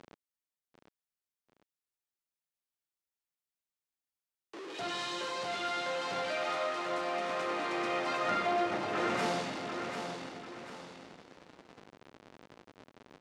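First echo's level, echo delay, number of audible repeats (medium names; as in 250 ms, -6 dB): -7.0 dB, 743 ms, 2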